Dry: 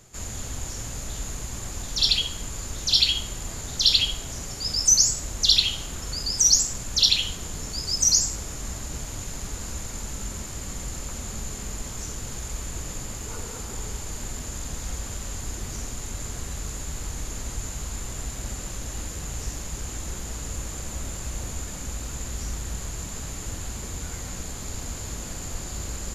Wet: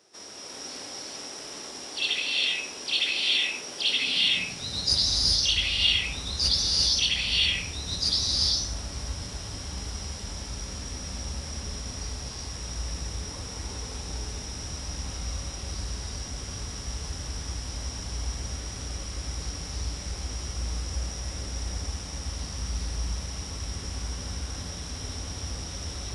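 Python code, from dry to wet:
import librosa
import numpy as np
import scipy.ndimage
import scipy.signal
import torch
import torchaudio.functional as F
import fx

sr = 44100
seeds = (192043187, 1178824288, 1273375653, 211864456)

y = fx.formant_shift(x, sr, semitones=-4)
y = fx.rev_gated(y, sr, seeds[0], gate_ms=420, shape='rising', drr_db=-3.0)
y = fx.filter_sweep_highpass(y, sr, from_hz=350.0, to_hz=64.0, start_s=3.83, end_s=5.12, q=1.4)
y = y * librosa.db_to_amplitude(-6.5)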